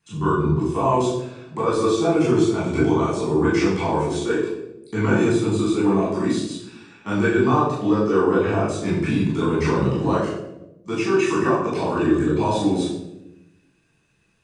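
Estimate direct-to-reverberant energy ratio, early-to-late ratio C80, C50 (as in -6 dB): -8.5 dB, 5.5 dB, 2.0 dB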